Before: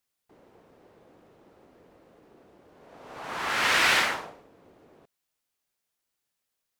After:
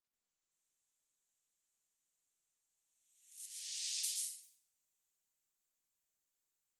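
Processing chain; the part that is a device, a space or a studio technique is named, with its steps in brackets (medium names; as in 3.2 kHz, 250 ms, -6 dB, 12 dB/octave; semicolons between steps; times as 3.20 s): local Wiener filter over 9 samples; inverse Chebyshev high-pass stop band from 1.3 kHz, stop band 80 dB; 3.46–4.04 s: distance through air 160 m; far-field microphone of a smart speaker (reverberation RT60 0.65 s, pre-delay 114 ms, DRR -2 dB; high-pass 84 Hz 24 dB/octave; level rider gain up to 8.5 dB; trim +3.5 dB; Opus 24 kbps 48 kHz)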